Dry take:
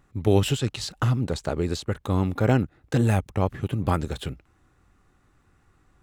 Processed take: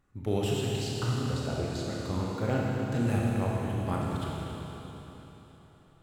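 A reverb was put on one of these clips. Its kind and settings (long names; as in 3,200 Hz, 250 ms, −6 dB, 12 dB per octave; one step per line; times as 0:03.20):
four-comb reverb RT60 3.8 s, combs from 26 ms, DRR −4 dB
level −10.5 dB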